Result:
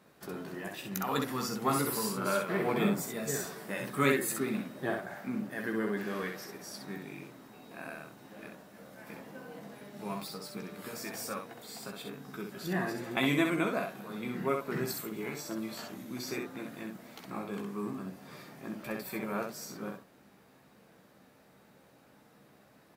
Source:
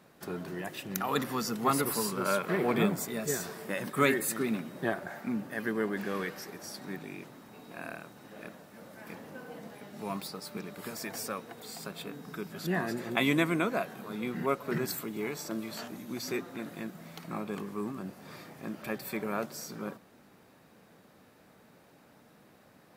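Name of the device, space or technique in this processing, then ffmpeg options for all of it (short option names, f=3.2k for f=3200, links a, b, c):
slapback doubling: -filter_complex "[0:a]asplit=3[a][b][c];[b]adelay=15,volume=-6dB[d];[c]adelay=64,volume=-4.5dB[e];[a][d][e]amix=inputs=3:normalize=0,volume=-3.5dB"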